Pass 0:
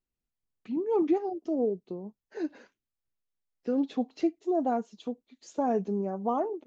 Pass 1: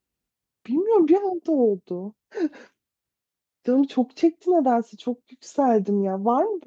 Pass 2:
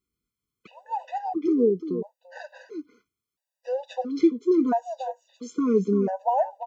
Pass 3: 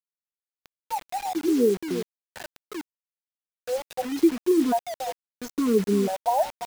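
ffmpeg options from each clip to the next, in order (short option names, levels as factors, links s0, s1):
-af "highpass=60,volume=2.51"
-af "aecho=1:1:343:0.282,afftfilt=real='re*gt(sin(2*PI*0.74*pts/sr)*(1-2*mod(floor(b*sr/1024/500),2)),0)':imag='im*gt(sin(2*PI*0.74*pts/sr)*(1-2*mod(floor(b*sr/1024/500),2)),0)':win_size=1024:overlap=0.75"
-af "acrusher=bits=5:mix=0:aa=0.000001"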